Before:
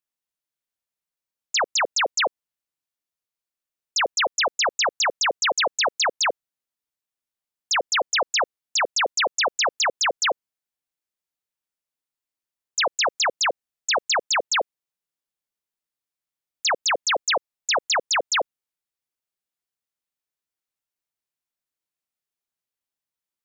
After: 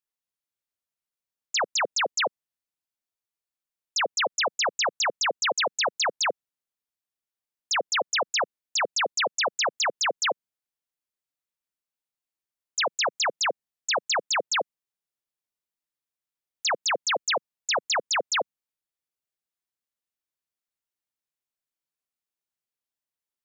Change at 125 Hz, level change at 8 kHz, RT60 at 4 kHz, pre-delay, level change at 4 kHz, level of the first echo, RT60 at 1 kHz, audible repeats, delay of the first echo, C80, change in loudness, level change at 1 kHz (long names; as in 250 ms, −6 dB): can't be measured, −3.5 dB, no reverb audible, no reverb audible, −3.5 dB, no echo audible, no reverb audible, no echo audible, no echo audible, no reverb audible, −3.5 dB, −3.5 dB